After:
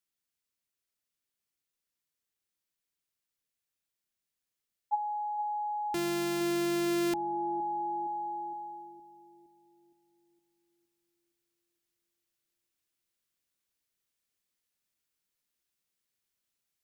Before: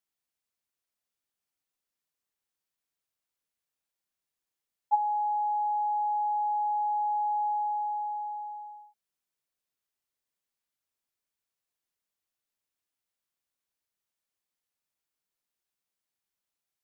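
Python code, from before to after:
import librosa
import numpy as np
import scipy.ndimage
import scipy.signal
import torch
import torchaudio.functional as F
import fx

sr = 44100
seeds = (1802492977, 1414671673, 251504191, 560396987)

y = fx.sample_sort(x, sr, block=128, at=(5.94, 7.14))
y = fx.peak_eq(y, sr, hz=820.0, db=-6.5, octaves=1.4)
y = fx.rider(y, sr, range_db=4, speed_s=2.0)
y = fx.echo_bbd(y, sr, ms=464, stages=2048, feedback_pct=52, wet_db=-10.0)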